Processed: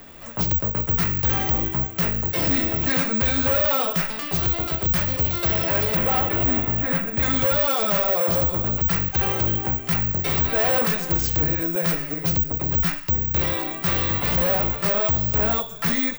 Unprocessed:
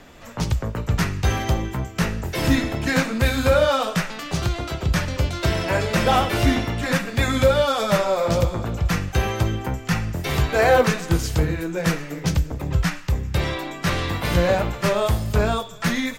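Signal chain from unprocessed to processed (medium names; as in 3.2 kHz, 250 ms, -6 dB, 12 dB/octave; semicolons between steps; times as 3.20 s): 5.95–7.23 s: distance through air 350 m; hard clipper -21 dBFS, distortion -7 dB; careless resampling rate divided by 2×, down filtered, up zero stuff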